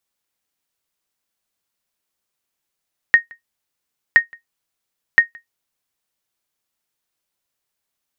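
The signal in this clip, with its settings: sonar ping 1.86 kHz, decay 0.13 s, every 1.02 s, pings 3, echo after 0.17 s, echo -29 dB -1 dBFS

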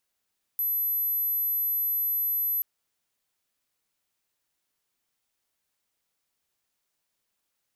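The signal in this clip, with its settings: tone sine 12 kHz -24 dBFS 2.03 s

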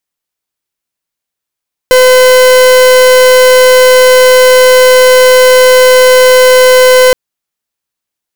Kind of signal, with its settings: pulse 509 Hz, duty 42% -3.5 dBFS 5.22 s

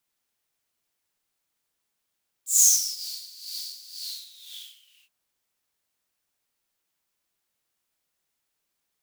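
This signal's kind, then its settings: synth patch with tremolo F#3, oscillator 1 triangle, noise 0 dB, filter highpass, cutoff 2.7 kHz, Q 11, filter envelope 1.5 oct, filter decay 0.62 s, filter sustain 50%, attack 278 ms, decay 0.22 s, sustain -22 dB, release 1.12 s, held 1.51 s, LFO 2 Hz, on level 13 dB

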